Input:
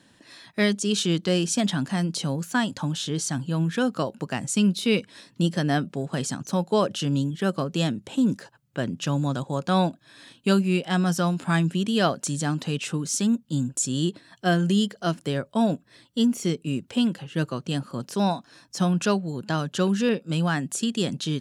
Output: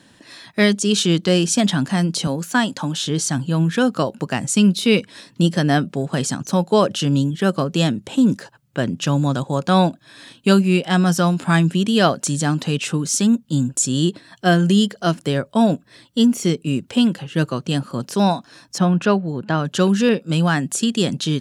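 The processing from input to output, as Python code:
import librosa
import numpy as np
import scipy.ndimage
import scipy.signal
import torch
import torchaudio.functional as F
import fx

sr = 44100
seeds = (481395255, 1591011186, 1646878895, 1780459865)

y = fx.highpass(x, sr, hz=180.0, slope=12, at=(2.27, 3.06))
y = fx.bass_treble(y, sr, bass_db=-1, treble_db=-15, at=(18.78, 19.65))
y = y * 10.0 ** (6.5 / 20.0)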